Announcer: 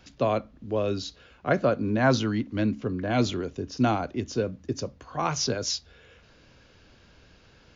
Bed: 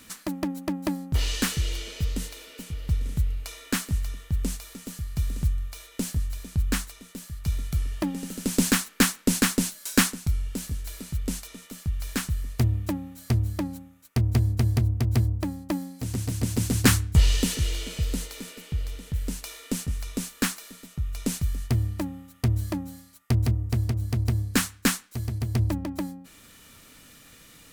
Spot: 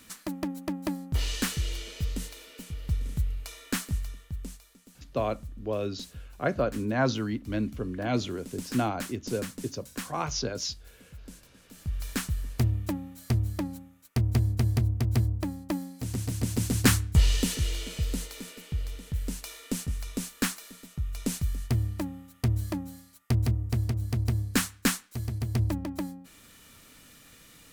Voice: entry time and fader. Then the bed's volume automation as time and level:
4.95 s, -4.0 dB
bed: 3.93 s -3.5 dB
4.81 s -17 dB
11.5 s -17 dB
11.95 s -2.5 dB

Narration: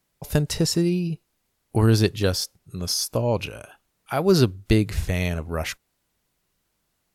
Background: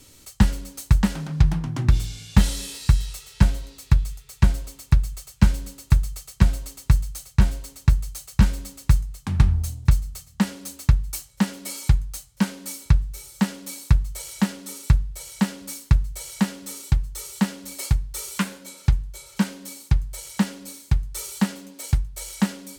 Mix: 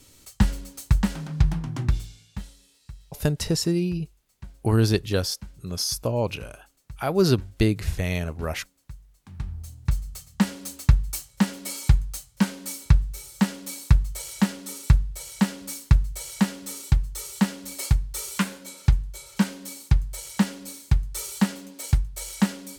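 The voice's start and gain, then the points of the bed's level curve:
2.90 s, -2.0 dB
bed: 1.82 s -3 dB
2.58 s -25 dB
8.97 s -25 dB
10.25 s 0 dB

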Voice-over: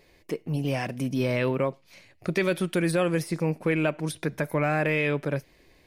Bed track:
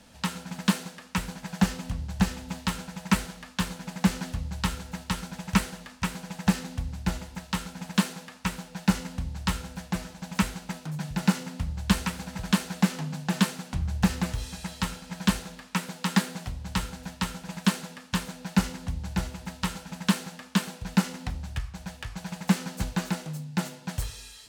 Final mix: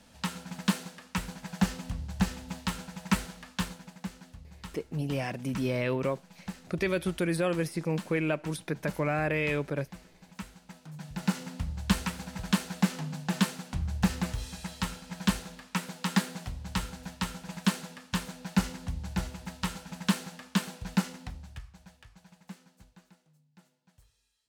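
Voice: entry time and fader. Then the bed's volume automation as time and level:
4.45 s, -4.0 dB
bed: 3.63 s -3.5 dB
4.09 s -16.5 dB
10.48 s -16.5 dB
11.49 s -3 dB
20.89 s -3 dB
23.19 s -31 dB

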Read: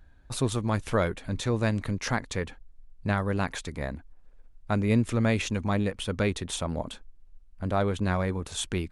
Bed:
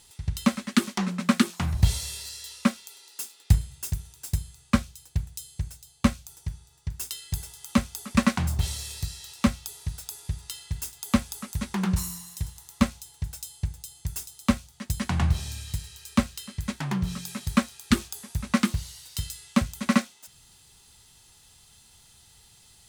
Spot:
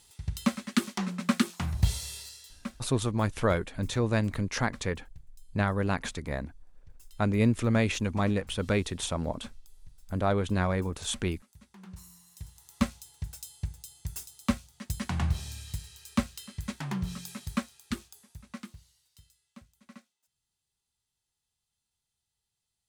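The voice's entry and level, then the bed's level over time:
2.50 s, -0.5 dB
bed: 2.19 s -4.5 dB
3.06 s -25 dB
11.73 s -25 dB
12.79 s -5 dB
17.25 s -5 dB
19.44 s -29.5 dB

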